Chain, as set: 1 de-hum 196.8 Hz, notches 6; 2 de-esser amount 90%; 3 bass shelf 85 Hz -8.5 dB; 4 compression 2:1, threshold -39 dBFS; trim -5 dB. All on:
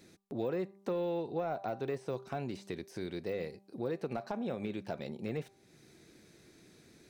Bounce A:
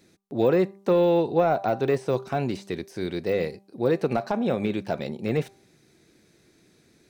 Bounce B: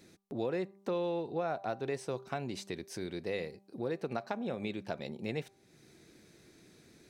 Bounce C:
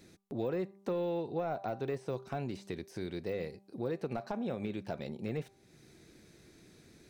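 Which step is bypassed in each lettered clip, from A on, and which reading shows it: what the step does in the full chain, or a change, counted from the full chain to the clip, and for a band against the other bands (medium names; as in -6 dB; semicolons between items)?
4, mean gain reduction 11.0 dB; 2, crest factor change +4.0 dB; 3, 125 Hz band +2.0 dB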